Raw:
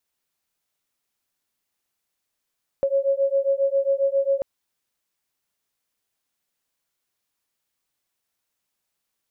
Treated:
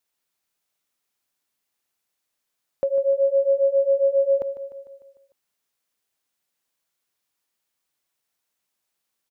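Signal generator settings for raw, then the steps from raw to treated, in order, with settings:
beating tones 546 Hz, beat 7.4 Hz, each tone -21.5 dBFS 1.59 s
bass shelf 130 Hz -6 dB; feedback delay 150 ms, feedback 57%, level -13 dB

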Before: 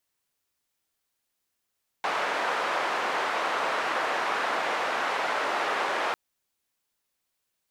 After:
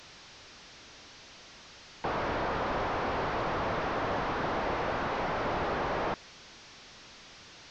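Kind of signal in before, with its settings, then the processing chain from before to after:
noise band 580–1300 Hz, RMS -28 dBFS 4.10 s
one-bit delta coder 32 kbps, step -45 dBFS; bass shelf 370 Hz +4 dB

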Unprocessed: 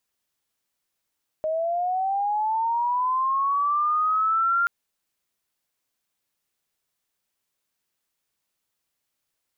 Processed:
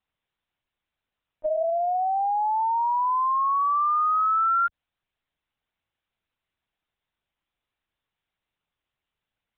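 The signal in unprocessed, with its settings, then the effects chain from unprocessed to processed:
sweep linear 620 Hz -> 1.4 kHz -22.5 dBFS -> -18.5 dBFS 3.23 s
high-pass 110 Hz 12 dB/octave; dynamic bell 270 Hz, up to +5 dB, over -47 dBFS, Q 1.2; LPC vocoder at 8 kHz pitch kept

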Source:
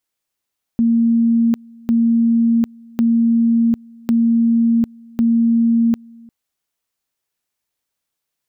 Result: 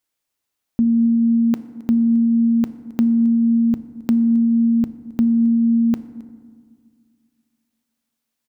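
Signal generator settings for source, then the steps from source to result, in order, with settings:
two-level tone 231 Hz -11 dBFS, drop 27 dB, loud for 0.75 s, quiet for 0.35 s, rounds 5
delay 267 ms -22 dB; FDN reverb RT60 1.9 s, low-frequency decay 1.3×, high-frequency decay 0.4×, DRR 12.5 dB

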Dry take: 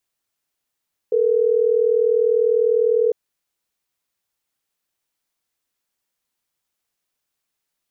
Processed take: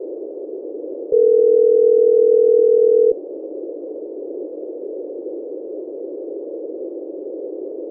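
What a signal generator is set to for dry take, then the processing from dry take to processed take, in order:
call progress tone ringback tone, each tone -17 dBFS
tilt EQ -4 dB/octave; band noise 310–540 Hz -29 dBFS

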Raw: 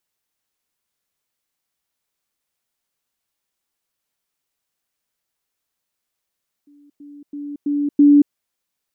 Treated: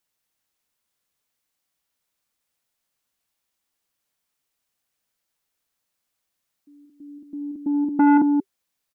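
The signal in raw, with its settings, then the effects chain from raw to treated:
level ladder 289 Hz -47 dBFS, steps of 10 dB, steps 5, 0.23 s 0.10 s
band-stop 390 Hz, Q 12; on a send: delay 182 ms -7.5 dB; on the sum: transformer saturation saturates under 530 Hz

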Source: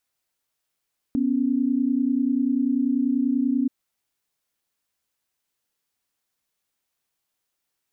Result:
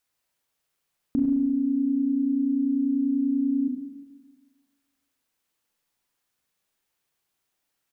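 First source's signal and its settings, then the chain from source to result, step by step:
chord B3/C#4 sine, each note -22 dBFS 2.53 s
on a send: delay 99 ms -10 dB; on the sum: spring tank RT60 1.4 s, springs 35/43 ms, chirp 60 ms, DRR 2 dB

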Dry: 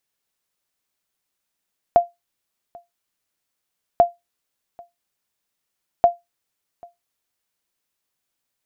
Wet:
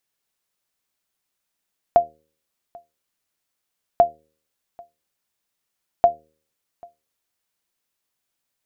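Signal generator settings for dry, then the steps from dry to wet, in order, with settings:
sonar ping 694 Hz, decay 0.18 s, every 2.04 s, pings 3, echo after 0.79 s, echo -27.5 dB -4.5 dBFS
de-hum 77.82 Hz, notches 7

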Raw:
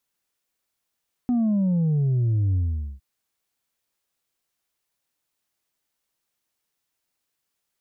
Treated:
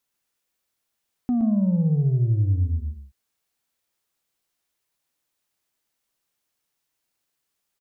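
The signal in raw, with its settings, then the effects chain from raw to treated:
sub drop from 250 Hz, over 1.71 s, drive 2.5 dB, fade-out 0.45 s, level -19 dB
delay 120 ms -6 dB

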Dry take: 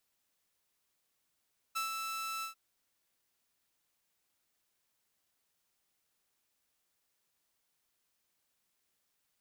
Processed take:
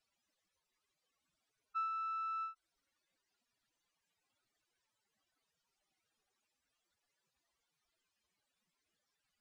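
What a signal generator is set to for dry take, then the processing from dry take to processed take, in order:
ADSR saw 1.32 kHz, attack 17 ms, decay 126 ms, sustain -4.5 dB, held 0.68 s, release 113 ms -29.5 dBFS
spectral contrast enhancement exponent 3.1; distance through air 65 m

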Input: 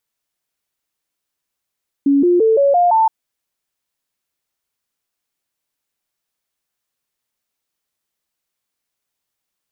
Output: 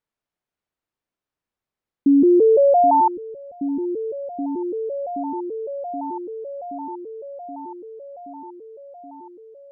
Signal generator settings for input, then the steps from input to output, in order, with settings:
stepped sine 280 Hz up, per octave 3, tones 6, 0.17 s, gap 0.00 s -9.5 dBFS
low-pass 1.1 kHz 6 dB/octave; delay with an opening low-pass 775 ms, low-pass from 200 Hz, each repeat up 1 oct, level -6 dB

